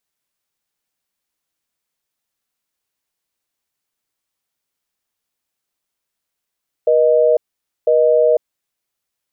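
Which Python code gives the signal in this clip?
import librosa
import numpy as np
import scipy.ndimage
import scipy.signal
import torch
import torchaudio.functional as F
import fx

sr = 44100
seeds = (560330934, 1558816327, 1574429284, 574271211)

y = fx.call_progress(sr, length_s=1.75, kind='busy tone', level_db=-12.5)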